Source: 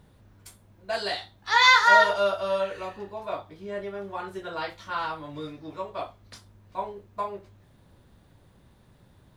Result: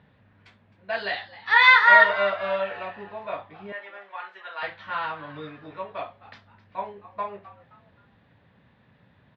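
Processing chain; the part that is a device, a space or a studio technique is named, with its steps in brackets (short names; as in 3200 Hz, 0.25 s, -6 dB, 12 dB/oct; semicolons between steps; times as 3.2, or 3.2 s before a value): 3.72–4.63 HPF 900 Hz 12 dB/oct; frequency-shifting delay pedal into a guitar cabinet (frequency-shifting echo 0.262 s, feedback 37%, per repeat +130 Hz, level -17.5 dB; speaker cabinet 110–3600 Hz, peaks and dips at 350 Hz -8 dB, 1800 Hz +7 dB, 2500 Hz +4 dB)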